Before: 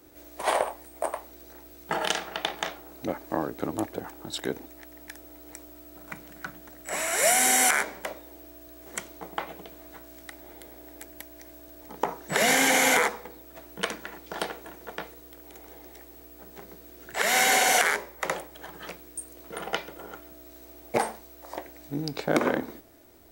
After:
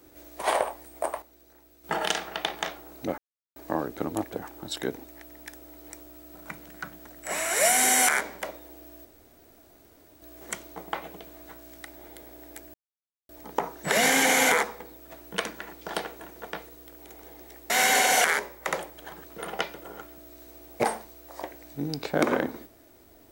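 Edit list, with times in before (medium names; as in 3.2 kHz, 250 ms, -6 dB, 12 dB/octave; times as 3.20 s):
1.22–1.84 s: gain -9 dB
3.18 s: insert silence 0.38 s
8.67 s: insert room tone 1.17 s
11.19–11.74 s: mute
16.15–17.27 s: delete
18.81–19.38 s: delete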